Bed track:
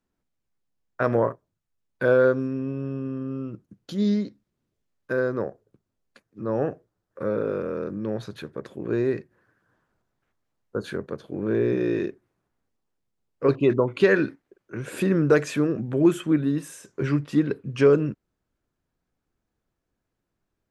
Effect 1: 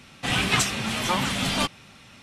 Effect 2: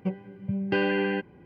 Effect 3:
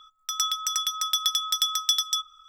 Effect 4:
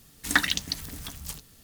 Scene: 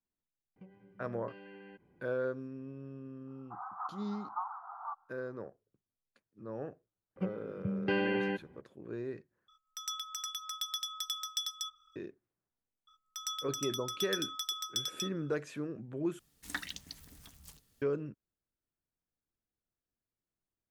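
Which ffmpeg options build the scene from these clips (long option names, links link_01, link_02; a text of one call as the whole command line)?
ffmpeg -i bed.wav -i cue0.wav -i cue1.wav -i cue2.wav -i cue3.wav -filter_complex "[2:a]asplit=2[link_01][link_02];[3:a]asplit=2[link_03][link_04];[0:a]volume=-16dB[link_05];[link_01]acompressor=threshold=-34dB:ratio=6:attack=3.2:release=140:knee=1:detection=peak[link_06];[1:a]asuperpass=centerf=1000:order=12:qfactor=1.6[link_07];[link_05]asplit=3[link_08][link_09][link_10];[link_08]atrim=end=9.484[link_11];[link_03]atrim=end=2.48,asetpts=PTS-STARTPTS,volume=-13dB[link_12];[link_09]atrim=start=11.956:end=16.194[link_13];[4:a]atrim=end=1.63,asetpts=PTS-STARTPTS,volume=-16.5dB[link_14];[link_10]atrim=start=17.816[link_15];[link_06]atrim=end=1.45,asetpts=PTS-STARTPTS,volume=-15dB,afade=type=in:duration=0.004:curve=hsin,afade=type=out:start_time=1.446:duration=0.004:curve=hsin,adelay=560[link_16];[link_07]atrim=end=2.22,asetpts=PTS-STARTPTS,volume=-9.5dB,afade=type=in:duration=0.004:curve=hsin,afade=type=out:start_time=2.216:duration=0.004:curve=hsin,adelay=3270[link_17];[link_02]atrim=end=1.45,asetpts=PTS-STARTPTS,volume=-6dB,afade=type=in:duration=0.004:curve=hsin,afade=type=out:start_time=1.446:duration=0.004:curve=hsin,adelay=7160[link_18];[link_04]atrim=end=2.48,asetpts=PTS-STARTPTS,volume=-12.5dB,afade=type=in:duration=0.004:curve=hsin,afade=type=out:start_time=2.476:duration=0.004:curve=hsin,adelay=12870[link_19];[link_11][link_12]acrossfade=duration=0.004:curve1=hsin:curve2=hsin[link_20];[link_20][link_13]acrossfade=duration=0.004:curve1=hsin:curve2=hsin[link_21];[link_21][link_14]acrossfade=duration=0.004:curve1=hsin:curve2=hsin[link_22];[link_22][link_15]acrossfade=duration=0.004:curve1=hsin:curve2=hsin[link_23];[link_23][link_16][link_17][link_18][link_19]amix=inputs=5:normalize=0" out.wav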